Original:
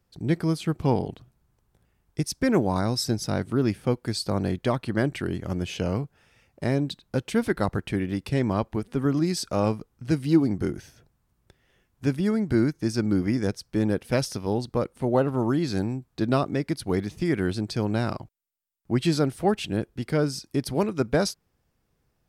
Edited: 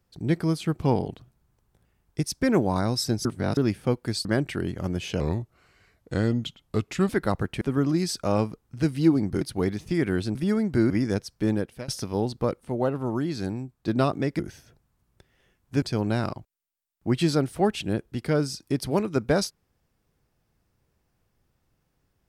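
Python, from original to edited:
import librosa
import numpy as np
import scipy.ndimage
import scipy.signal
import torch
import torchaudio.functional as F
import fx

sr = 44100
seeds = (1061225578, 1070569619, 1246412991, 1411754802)

y = fx.edit(x, sr, fx.reverse_span(start_s=3.25, length_s=0.32),
    fx.cut(start_s=4.25, length_s=0.66),
    fx.speed_span(start_s=5.86, length_s=1.57, speed=0.83),
    fx.cut(start_s=7.95, length_s=0.94),
    fx.swap(start_s=10.69, length_s=1.43, other_s=16.72, other_length_s=0.94),
    fx.cut(start_s=12.67, length_s=0.56),
    fx.fade_out_to(start_s=13.82, length_s=0.39, floor_db=-23.0),
    fx.clip_gain(start_s=14.95, length_s=1.25, db=-3.5), tone=tone)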